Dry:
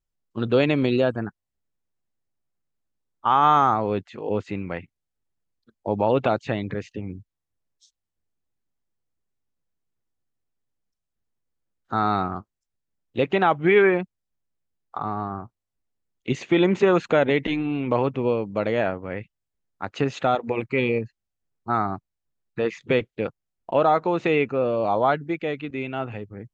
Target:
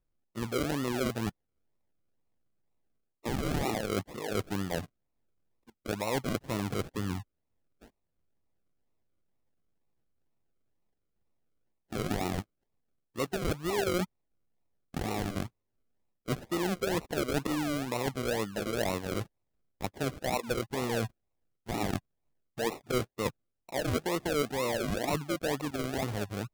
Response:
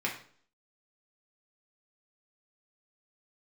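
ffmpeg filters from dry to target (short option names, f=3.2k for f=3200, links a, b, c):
-af "areverse,acompressor=threshold=-32dB:ratio=6,areverse,acrusher=samples=39:mix=1:aa=0.000001:lfo=1:lforange=23.4:lforate=2.1,volume=3dB"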